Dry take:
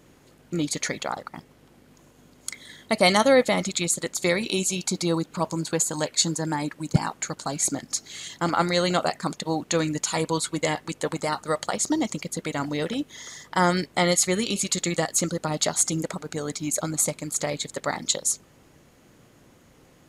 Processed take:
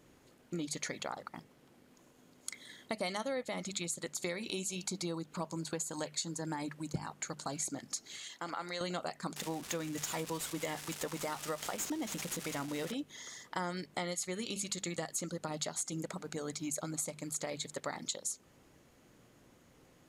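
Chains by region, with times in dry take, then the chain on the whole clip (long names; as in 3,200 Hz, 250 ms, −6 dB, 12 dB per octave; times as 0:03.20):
0:08.16–0:08.81: low-pass filter 1,400 Hz 6 dB per octave + downward compressor 2 to 1, threshold −27 dBFS + spectral tilt +4 dB per octave
0:09.36–0:12.92: spike at every zero crossing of −24 dBFS + notch filter 4,300 Hz, Q 6 + linearly interpolated sample-rate reduction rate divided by 2×
whole clip: mains-hum notches 50/100/150/200 Hz; downward compressor 5 to 1, threshold −27 dBFS; level −7.5 dB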